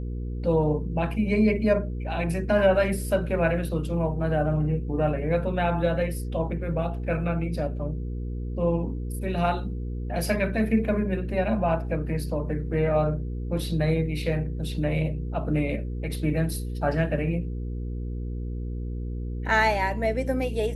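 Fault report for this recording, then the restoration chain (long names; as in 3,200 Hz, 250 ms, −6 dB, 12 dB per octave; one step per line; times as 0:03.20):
mains hum 60 Hz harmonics 8 −31 dBFS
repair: hum removal 60 Hz, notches 8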